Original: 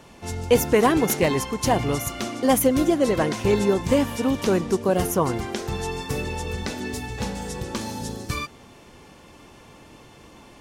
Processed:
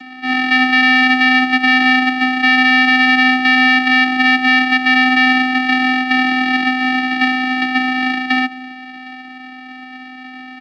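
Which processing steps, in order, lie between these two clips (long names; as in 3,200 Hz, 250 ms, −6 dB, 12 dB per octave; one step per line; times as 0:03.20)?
samples sorted by size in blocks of 256 samples
hard clipping −20 dBFS, distortion −8 dB
high-shelf EQ 2,000 Hz +10 dB
voice inversion scrambler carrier 2,600 Hz
comb filter 3.7 ms, depth 77%
repeating echo 758 ms, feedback 25%, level −23 dB
on a send at −17 dB: convolution reverb RT60 0.60 s, pre-delay 4 ms
on the sum: channel vocoder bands 8, square 256 Hz
parametric band 460 Hz +8 dB 2.1 octaves
boost into a limiter +9 dB
level −1 dB
A-law companding 128 kbit/s 16,000 Hz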